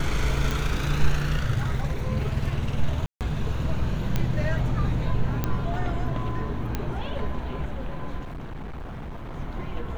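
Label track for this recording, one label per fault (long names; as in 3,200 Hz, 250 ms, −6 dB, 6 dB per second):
0.510000	0.510000	click
3.060000	3.210000	drop-out 148 ms
4.160000	4.160000	click −11 dBFS
5.440000	5.440000	click −11 dBFS
6.750000	6.750000	click −13 dBFS
8.190000	9.350000	clipping −32 dBFS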